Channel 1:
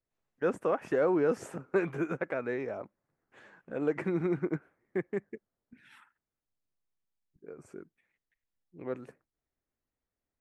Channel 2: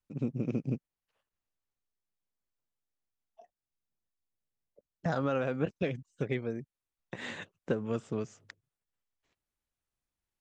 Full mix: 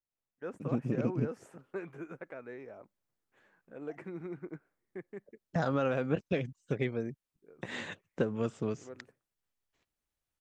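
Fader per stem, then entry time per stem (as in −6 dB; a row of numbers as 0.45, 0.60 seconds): −11.5, +0.5 decibels; 0.00, 0.50 seconds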